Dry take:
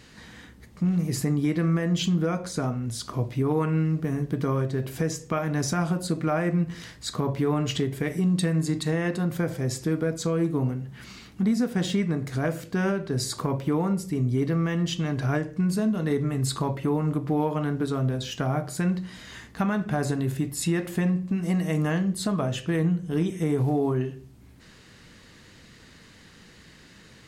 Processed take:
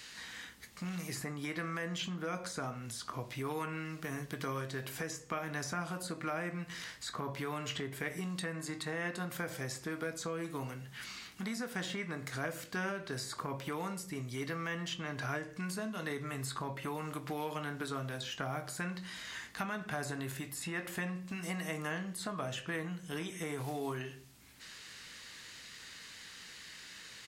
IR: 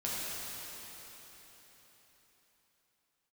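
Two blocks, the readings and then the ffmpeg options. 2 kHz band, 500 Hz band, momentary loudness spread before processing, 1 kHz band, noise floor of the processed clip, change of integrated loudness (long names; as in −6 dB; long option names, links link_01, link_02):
−3.0 dB, −12.5 dB, 5 LU, −7.0 dB, −52 dBFS, −13.5 dB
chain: -filter_complex "[0:a]acrossover=split=540|1900[link_01][link_02][link_03];[link_01]acompressor=threshold=-27dB:ratio=4[link_04];[link_02]acompressor=threshold=-37dB:ratio=4[link_05];[link_03]acompressor=threshold=-52dB:ratio=4[link_06];[link_04][link_05][link_06]amix=inputs=3:normalize=0,tiltshelf=frequency=820:gain=-10,asplit=2[link_07][link_08];[link_08]adelay=22,volume=-12.5dB[link_09];[link_07][link_09]amix=inputs=2:normalize=0,volume=-4dB"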